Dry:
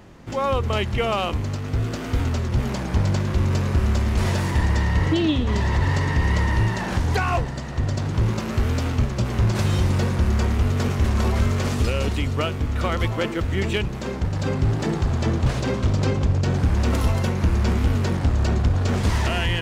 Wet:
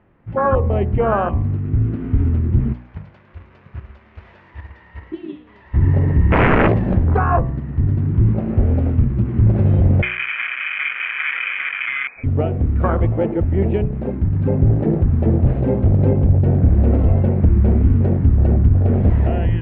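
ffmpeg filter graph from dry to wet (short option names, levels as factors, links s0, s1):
-filter_complex "[0:a]asettb=1/sr,asplit=3[s0][s1][s2];[s0]atrim=end=2.734[s3];[s1]atrim=start=2.73:end=5.74,asetpts=PTS-STARTPTS,afade=t=in:d=0.004:c=qsin,afade=t=out:st=3.006:d=0.004:c=qsin,agate=range=0.355:threshold=0.126:ratio=16:release=100:detection=peak,aemphasis=mode=production:type=riaa[s4];[s2]atrim=start=5.736[s5];[s3][s4]acrossfade=d=0.004:c1=hsin:c2=qsin[s6];[s6][s5]acrossfade=d=0.004:c1=qsin:c2=hsin,asettb=1/sr,asplit=3[s7][s8][s9];[s7]atrim=end=6.324[s10];[s8]atrim=start=6.32:end=6.95,asetpts=PTS-STARTPTS,afade=t=in:d=0.004:c=qsin,afade=t=out:st=0.626:d=0.004:c=qsin,bass=f=250:g=7,treble=f=4000:g=14,aeval=exprs='(mod(4.47*val(0)+1,2)-1)/4.47':c=same[s11];[s9]atrim=start=6.946[s12];[s10][s11]acrossfade=d=0.004:c1=hsin:c2=qsin[s13];[s13][s12]acrossfade=d=0.004:c1=qsin:c2=hsin,asettb=1/sr,asplit=3[s14][s15][s16];[s14]atrim=end=10.024[s17];[s15]atrim=start=10.02:end=12.24,asetpts=PTS-STARTPTS,afade=t=in:d=0.004:c=qsin,afade=t=out:st=2.216:d=0.004:c=qsin,highpass=140,lowpass=f=2200:t=q:w=0.5098,lowpass=f=2200:t=q:w=0.6013,lowpass=f=2200:t=q:w=0.9,lowpass=f=2200:t=q:w=2.563,afreqshift=-2600[s18];[s16]atrim=start=12.236[s19];[s17][s18]acrossfade=d=0.004:c1=hsin:c2=qsin[s20];[s20][s19]acrossfade=d=0.004:c1=qsin:c2=hsin,afwtdn=0.0891,lowpass=f=2400:w=0.5412,lowpass=f=2400:w=1.3066,bandreject=f=60.83:t=h:w=4,bandreject=f=121.66:t=h:w=4,bandreject=f=182.49:t=h:w=4,bandreject=f=243.32:t=h:w=4,bandreject=f=304.15:t=h:w=4,bandreject=f=364.98:t=h:w=4,bandreject=f=425.81:t=h:w=4,bandreject=f=486.64:t=h:w=4,bandreject=f=547.47:t=h:w=4,bandreject=f=608.3:t=h:w=4,bandreject=f=669.13:t=h:w=4,bandreject=f=729.96:t=h:w=4,bandreject=f=790.79:t=h:w=4,bandreject=f=851.62:t=h:w=4,bandreject=f=912.45:t=h:w=4,bandreject=f=973.28:t=h:w=4,bandreject=f=1034.11:t=h:w=4,bandreject=f=1094.94:t=h:w=4,bandreject=f=1155.77:t=h:w=4,volume=2.24"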